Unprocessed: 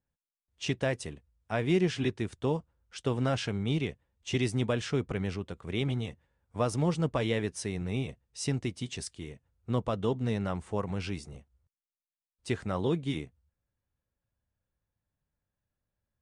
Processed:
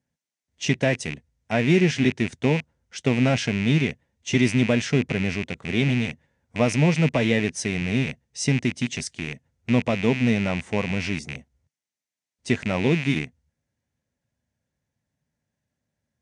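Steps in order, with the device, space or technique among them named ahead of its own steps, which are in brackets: car door speaker with a rattle (rattle on loud lows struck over -42 dBFS, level -26 dBFS; cabinet simulation 80–9500 Hz, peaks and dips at 150 Hz +5 dB, 240 Hz +8 dB, 640 Hz +3 dB, 1.2 kHz -6 dB, 2 kHz +6 dB, 6.1 kHz +6 dB); trim +5.5 dB

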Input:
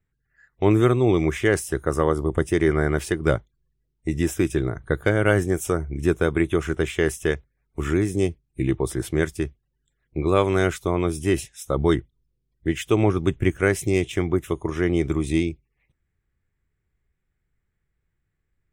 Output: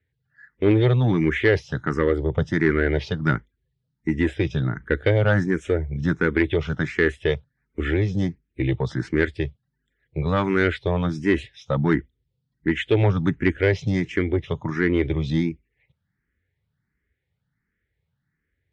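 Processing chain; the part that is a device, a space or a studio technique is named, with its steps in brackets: barber-pole phaser into a guitar amplifier (barber-pole phaser +1.4 Hz; saturation -14 dBFS, distortion -19 dB; cabinet simulation 84–4400 Hz, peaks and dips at 360 Hz -6 dB, 700 Hz -7 dB, 1.1 kHz -8 dB, 1.8 kHz +4 dB, 2.6 kHz -4 dB); trim +7 dB

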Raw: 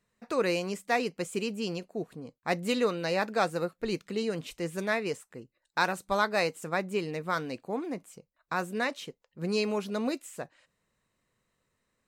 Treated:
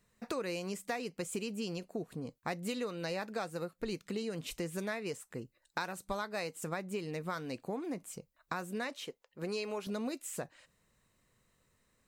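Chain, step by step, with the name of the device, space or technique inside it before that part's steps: 8.96–9.87 s: tone controls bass -14 dB, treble -4 dB; ASMR close-microphone chain (bass shelf 140 Hz +6 dB; compression 6:1, threshold -37 dBFS, peak gain reduction 16 dB; treble shelf 6 kHz +6 dB); trim +2 dB

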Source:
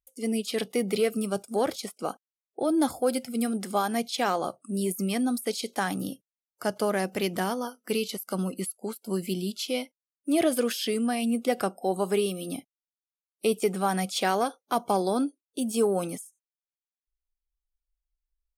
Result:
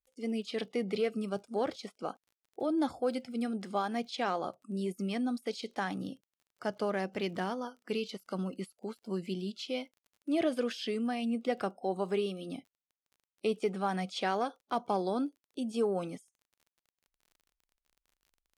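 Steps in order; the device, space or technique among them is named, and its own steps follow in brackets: lo-fi chain (low-pass 4.6 kHz 12 dB/octave; wow and flutter 21 cents; crackle 31 per s -46 dBFS); trim -6 dB

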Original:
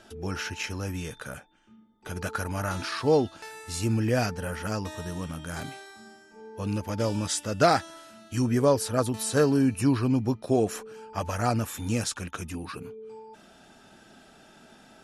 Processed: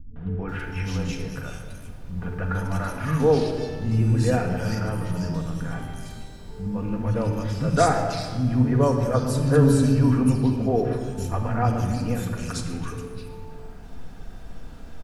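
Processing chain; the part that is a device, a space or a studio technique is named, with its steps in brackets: car interior (peaking EQ 150 Hz +8.5 dB 0.94 oct; treble shelf 4.1 kHz -6 dB; brown noise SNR 16 dB); three bands offset in time lows, mids, highs 160/490 ms, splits 230/2600 Hz; simulated room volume 3200 m³, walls mixed, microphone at 1.8 m

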